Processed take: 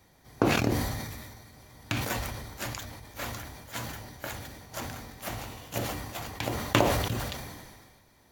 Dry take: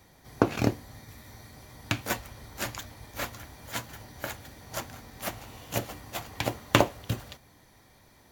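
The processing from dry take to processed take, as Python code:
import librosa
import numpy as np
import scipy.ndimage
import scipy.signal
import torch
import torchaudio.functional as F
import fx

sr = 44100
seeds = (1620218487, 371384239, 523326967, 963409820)

y = fx.sustainer(x, sr, db_per_s=35.0)
y = y * librosa.db_to_amplitude(-3.5)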